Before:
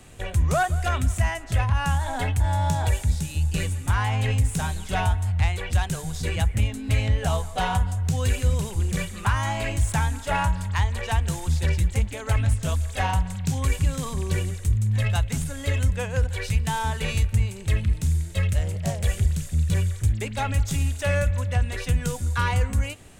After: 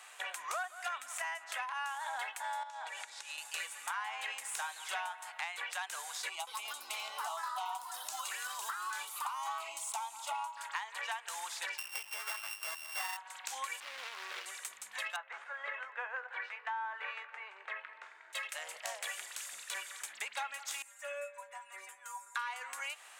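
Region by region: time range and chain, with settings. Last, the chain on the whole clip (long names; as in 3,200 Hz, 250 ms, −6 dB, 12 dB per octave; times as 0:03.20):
0:02.63–0:03.38: high-pass filter 180 Hz + high-frequency loss of the air 60 metres + downward compressor 8 to 1, threshold −36 dBFS
0:06.29–0:10.57: phaser with its sweep stopped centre 340 Hz, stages 8 + delay with pitch and tempo change per echo 180 ms, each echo +5 semitones, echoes 2, each echo −6 dB
0:11.78–0:13.17: samples sorted by size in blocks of 16 samples + high-shelf EQ 6,100 Hz +8 dB
0:13.80–0:14.46: running median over 41 samples + meter weighting curve D + hard clipping −22.5 dBFS
0:15.16–0:18.33: Chebyshev band-pass filter 390–1,700 Hz + double-tracking delay 20 ms −12 dB
0:20.82–0:22.35: flat-topped bell 4,000 Hz −11 dB 1.2 octaves + stiff-string resonator 190 Hz, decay 0.23 s, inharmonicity 0.002
whole clip: high-pass filter 940 Hz 24 dB per octave; high-shelf EQ 2,100 Hz −9 dB; downward compressor 5 to 1, threshold −43 dBFS; level +6 dB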